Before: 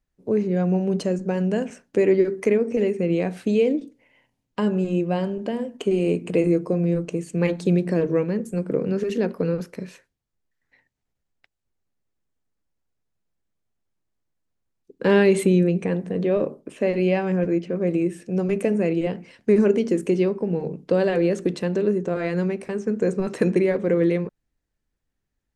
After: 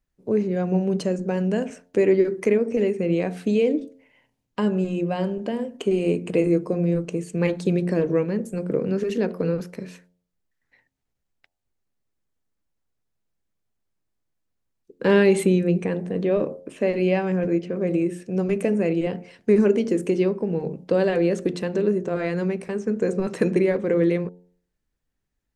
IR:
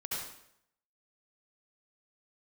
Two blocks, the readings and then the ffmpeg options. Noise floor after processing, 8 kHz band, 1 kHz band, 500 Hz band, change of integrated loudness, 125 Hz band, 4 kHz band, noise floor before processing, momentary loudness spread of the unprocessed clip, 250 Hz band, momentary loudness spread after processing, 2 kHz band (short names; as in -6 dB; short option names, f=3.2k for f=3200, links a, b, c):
-78 dBFS, 0.0 dB, -0.5 dB, 0.0 dB, -0.5 dB, -1.0 dB, 0.0 dB, -79 dBFS, 8 LU, -0.5 dB, 7 LU, 0.0 dB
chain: -af "bandreject=f=89.03:t=h:w=4,bandreject=f=178.06:t=h:w=4,bandreject=f=267.09:t=h:w=4,bandreject=f=356.12:t=h:w=4,bandreject=f=445.15:t=h:w=4,bandreject=f=534.18:t=h:w=4,bandreject=f=623.21:t=h:w=4,bandreject=f=712.24:t=h:w=4,bandreject=f=801.27:t=h:w=4,bandreject=f=890.3:t=h:w=4"